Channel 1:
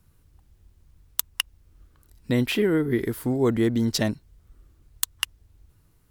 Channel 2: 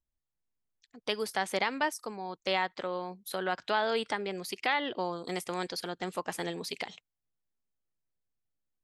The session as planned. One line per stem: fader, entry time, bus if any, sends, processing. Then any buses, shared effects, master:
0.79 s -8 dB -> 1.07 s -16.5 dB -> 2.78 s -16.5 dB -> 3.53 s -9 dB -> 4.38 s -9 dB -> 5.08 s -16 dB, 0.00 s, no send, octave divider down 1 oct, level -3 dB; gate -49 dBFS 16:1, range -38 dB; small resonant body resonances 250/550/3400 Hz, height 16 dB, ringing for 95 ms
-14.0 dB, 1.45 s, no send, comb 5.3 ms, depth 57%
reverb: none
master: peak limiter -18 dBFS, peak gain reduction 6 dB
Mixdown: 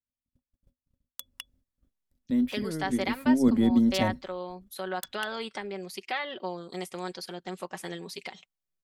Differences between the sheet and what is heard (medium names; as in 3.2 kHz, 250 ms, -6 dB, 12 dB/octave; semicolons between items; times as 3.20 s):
stem 2 -14.0 dB -> -4.0 dB; master: missing peak limiter -18 dBFS, peak gain reduction 6 dB